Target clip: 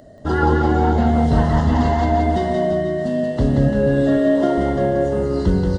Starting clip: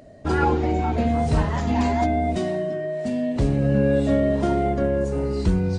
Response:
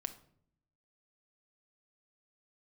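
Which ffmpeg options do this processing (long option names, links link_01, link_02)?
-filter_complex "[0:a]asettb=1/sr,asplit=3[link_01][link_02][link_03];[link_01]atrim=end=3.684[link_04];[link_02]atrim=start=3.68:end=4.58,asetpts=PTS-STARTPTS,afade=type=in:duration=0.004:curve=qsin,afade=type=out:start_time=0.896:duration=0.004:curve=qsin,highpass=210[link_05];[link_03]atrim=start=4.576[link_06];[link_04][link_05]acrossfade=duration=0.004:curve1=hsin:curve2=qsin[link_07];[link_07][link_06]acrossfade=duration=0.004:curve1=qsin:curve2=hsin,acrossover=split=5100[link_08][link_09];[link_09]acompressor=threshold=-56dB:ratio=4:attack=1:release=60[link_10];[link_08][link_10]amix=inputs=2:normalize=0,asuperstop=centerf=2400:order=4:qfactor=3.4,aecho=1:1:180|342|487.8|619|737.1:0.631|0.398|0.251|0.158|0.1,volume=2.5dB"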